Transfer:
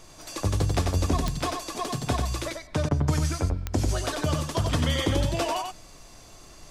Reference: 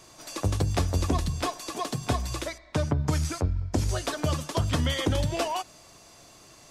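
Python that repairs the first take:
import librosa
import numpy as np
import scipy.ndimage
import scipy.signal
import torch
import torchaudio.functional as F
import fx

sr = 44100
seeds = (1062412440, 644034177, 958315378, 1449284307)

y = fx.fix_declick_ar(x, sr, threshold=10.0)
y = fx.fix_interpolate(y, sr, at_s=(2.89,), length_ms=18.0)
y = fx.noise_reduce(y, sr, print_start_s=6.06, print_end_s=6.56, reduce_db=6.0)
y = fx.fix_echo_inverse(y, sr, delay_ms=92, level_db=-4.5)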